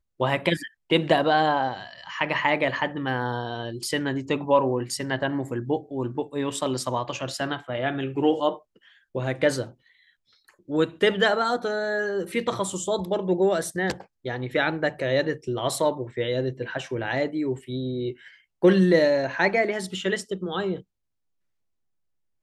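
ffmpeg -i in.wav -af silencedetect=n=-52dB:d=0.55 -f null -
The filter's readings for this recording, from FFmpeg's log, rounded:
silence_start: 20.82
silence_end: 22.43 | silence_duration: 1.61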